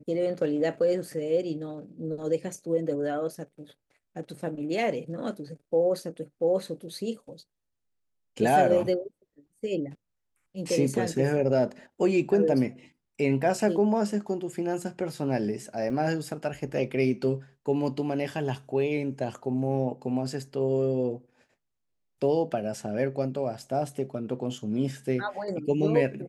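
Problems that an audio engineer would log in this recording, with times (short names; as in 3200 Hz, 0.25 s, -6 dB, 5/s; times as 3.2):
15.9 gap 2.7 ms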